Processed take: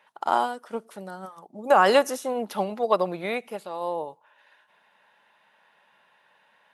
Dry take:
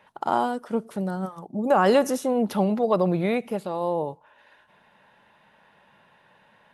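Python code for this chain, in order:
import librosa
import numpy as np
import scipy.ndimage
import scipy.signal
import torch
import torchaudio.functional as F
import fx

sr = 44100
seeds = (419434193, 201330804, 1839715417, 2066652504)

y = fx.highpass(x, sr, hz=840.0, slope=6)
y = fx.upward_expand(y, sr, threshold_db=-36.0, expansion=1.5)
y = F.gain(torch.from_numpy(y), 6.5).numpy()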